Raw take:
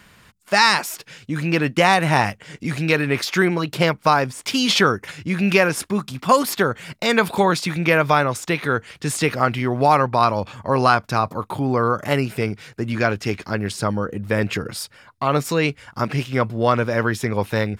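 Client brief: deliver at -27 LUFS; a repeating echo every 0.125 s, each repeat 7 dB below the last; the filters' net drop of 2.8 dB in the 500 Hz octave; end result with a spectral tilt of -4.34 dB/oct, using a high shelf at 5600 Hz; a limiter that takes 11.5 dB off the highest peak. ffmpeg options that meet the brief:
-af "equalizer=f=500:t=o:g=-3.5,highshelf=f=5.6k:g=5.5,alimiter=limit=-13dB:level=0:latency=1,aecho=1:1:125|250|375|500|625:0.447|0.201|0.0905|0.0407|0.0183,volume=-3.5dB"

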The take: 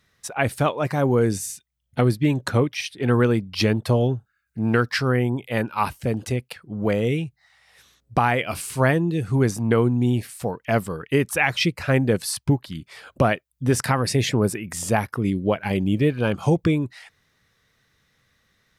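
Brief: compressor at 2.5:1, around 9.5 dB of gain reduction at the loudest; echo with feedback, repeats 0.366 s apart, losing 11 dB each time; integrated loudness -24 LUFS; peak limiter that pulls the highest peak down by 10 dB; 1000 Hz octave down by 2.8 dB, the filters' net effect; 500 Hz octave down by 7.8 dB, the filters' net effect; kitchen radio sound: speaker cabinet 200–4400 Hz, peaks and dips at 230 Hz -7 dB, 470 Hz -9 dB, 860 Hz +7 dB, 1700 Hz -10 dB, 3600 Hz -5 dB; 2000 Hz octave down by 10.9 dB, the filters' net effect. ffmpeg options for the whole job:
-af "equalizer=f=500:t=o:g=-3,equalizer=f=1k:t=o:g=-5,equalizer=f=2k:t=o:g=-7,acompressor=threshold=-30dB:ratio=2.5,alimiter=level_in=0.5dB:limit=-24dB:level=0:latency=1,volume=-0.5dB,highpass=200,equalizer=f=230:t=q:w=4:g=-7,equalizer=f=470:t=q:w=4:g=-9,equalizer=f=860:t=q:w=4:g=7,equalizer=f=1.7k:t=q:w=4:g=-10,equalizer=f=3.6k:t=q:w=4:g=-5,lowpass=f=4.4k:w=0.5412,lowpass=f=4.4k:w=1.3066,aecho=1:1:366|732|1098:0.282|0.0789|0.0221,volume=16dB"

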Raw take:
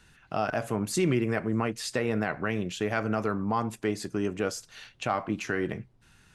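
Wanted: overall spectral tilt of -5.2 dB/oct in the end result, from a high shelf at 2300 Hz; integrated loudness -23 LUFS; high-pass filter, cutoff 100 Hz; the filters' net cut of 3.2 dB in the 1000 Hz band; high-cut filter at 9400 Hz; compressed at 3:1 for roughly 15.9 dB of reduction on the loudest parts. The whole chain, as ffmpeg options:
-af "highpass=100,lowpass=9.4k,equalizer=f=1k:t=o:g=-3.5,highshelf=f=2.3k:g=-4.5,acompressor=threshold=-45dB:ratio=3,volume=22dB"

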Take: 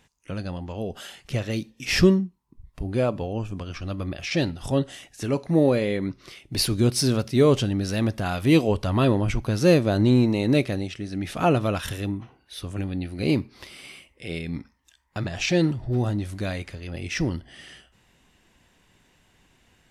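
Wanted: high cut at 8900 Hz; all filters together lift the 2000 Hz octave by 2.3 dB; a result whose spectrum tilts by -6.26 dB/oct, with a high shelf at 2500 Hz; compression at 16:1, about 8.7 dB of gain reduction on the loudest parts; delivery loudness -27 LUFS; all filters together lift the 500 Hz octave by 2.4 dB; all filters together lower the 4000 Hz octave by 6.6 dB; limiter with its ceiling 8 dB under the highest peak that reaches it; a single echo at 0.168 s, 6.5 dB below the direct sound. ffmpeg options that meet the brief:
-af "lowpass=8.9k,equalizer=f=500:t=o:g=3,equalizer=f=2k:t=o:g=7.5,highshelf=f=2.5k:g=-6,equalizer=f=4k:t=o:g=-5.5,acompressor=threshold=-19dB:ratio=16,alimiter=limit=-18dB:level=0:latency=1,aecho=1:1:168:0.473,volume=1.5dB"

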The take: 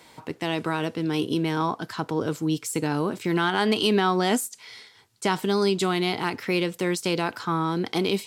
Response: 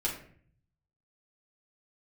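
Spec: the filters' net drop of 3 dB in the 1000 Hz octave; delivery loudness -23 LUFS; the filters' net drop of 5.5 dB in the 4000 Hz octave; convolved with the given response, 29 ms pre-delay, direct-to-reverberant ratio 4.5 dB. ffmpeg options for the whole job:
-filter_complex "[0:a]equalizer=f=1k:t=o:g=-3.5,equalizer=f=4k:t=o:g=-7.5,asplit=2[a][b];[1:a]atrim=start_sample=2205,adelay=29[c];[b][c]afir=irnorm=-1:irlink=0,volume=-10dB[d];[a][d]amix=inputs=2:normalize=0,volume=2dB"

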